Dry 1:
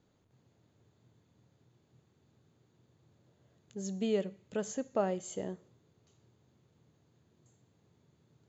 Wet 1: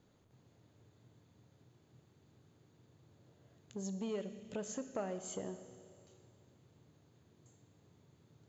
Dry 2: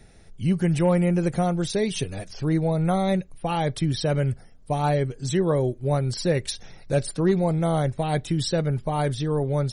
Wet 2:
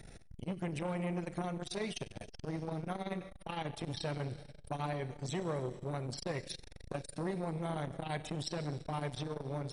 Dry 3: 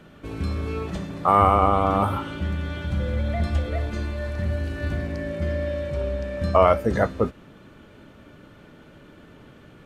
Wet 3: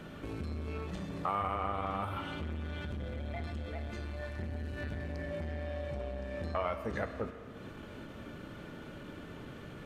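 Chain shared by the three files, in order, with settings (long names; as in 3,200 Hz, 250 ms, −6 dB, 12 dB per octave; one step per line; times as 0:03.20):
dynamic equaliser 2,400 Hz, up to +7 dB, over −41 dBFS, Q 0.89
downward compressor 2.5 to 1, threshold −42 dBFS
four-comb reverb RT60 2.4 s, combs from 27 ms, DRR 11 dB
saturating transformer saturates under 540 Hz
level +2 dB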